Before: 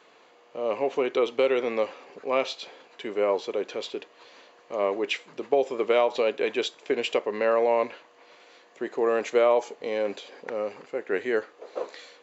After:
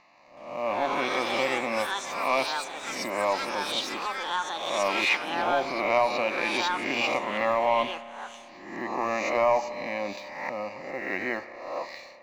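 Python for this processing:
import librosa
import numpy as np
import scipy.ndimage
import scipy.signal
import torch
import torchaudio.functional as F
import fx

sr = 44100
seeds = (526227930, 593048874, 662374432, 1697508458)

y = fx.spec_swells(x, sr, rise_s=0.91)
y = scipy.signal.sosfilt(scipy.signal.butter(2, 5300.0, 'lowpass', fs=sr, output='sos'), y)
y = fx.leveller(y, sr, passes=1)
y = fx.fixed_phaser(y, sr, hz=2200.0, stages=8)
y = fx.echo_pitch(y, sr, ms=371, semitones=7, count=3, db_per_echo=-6.0)
y = fx.rev_spring(y, sr, rt60_s=3.3, pass_ms=(30,), chirp_ms=35, drr_db=14.5)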